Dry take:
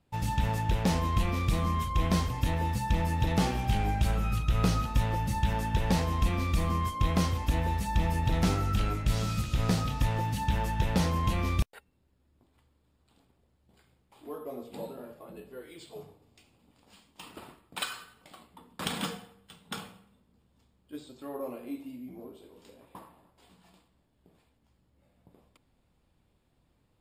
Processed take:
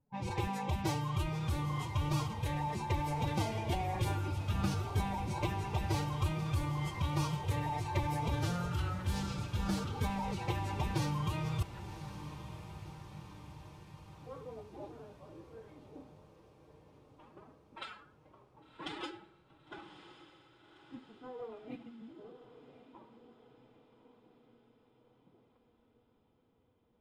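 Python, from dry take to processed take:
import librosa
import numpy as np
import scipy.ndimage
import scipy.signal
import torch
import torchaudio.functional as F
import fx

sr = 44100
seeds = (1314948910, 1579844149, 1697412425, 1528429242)

y = fx.env_lowpass(x, sr, base_hz=970.0, full_db=-23.0)
y = fx.pitch_keep_formants(y, sr, semitones=10.0)
y = fx.echo_diffused(y, sr, ms=1091, feedback_pct=57, wet_db=-12.0)
y = y * librosa.db_to_amplitude(-7.0)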